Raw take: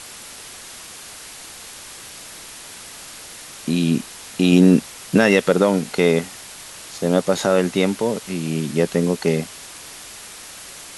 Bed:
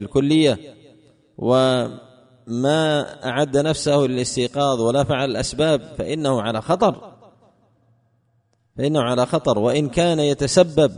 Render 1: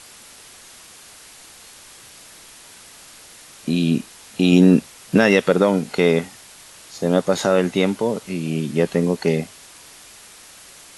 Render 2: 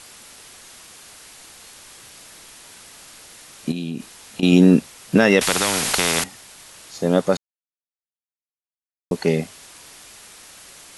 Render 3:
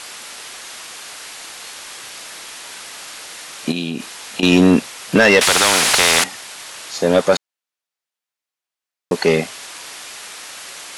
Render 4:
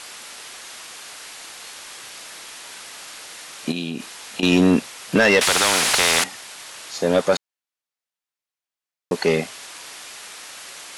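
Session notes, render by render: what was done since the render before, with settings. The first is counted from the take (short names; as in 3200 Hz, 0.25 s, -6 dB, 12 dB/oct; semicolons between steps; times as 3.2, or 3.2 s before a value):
noise print and reduce 6 dB
3.71–4.43 compressor 12:1, threshold -23 dBFS; 5.41–6.24 spectral compressor 4:1; 7.37–9.11 mute
overdrive pedal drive 18 dB, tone 5100 Hz, clips at -1.5 dBFS
gain -4 dB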